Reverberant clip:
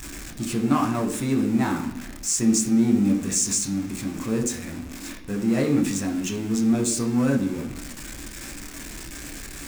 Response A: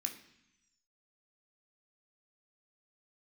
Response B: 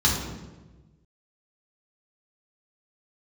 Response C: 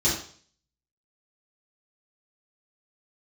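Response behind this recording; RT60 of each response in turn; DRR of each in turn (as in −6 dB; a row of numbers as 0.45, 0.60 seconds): A; 0.80, 1.2, 0.50 seconds; 2.0, −4.5, −9.5 decibels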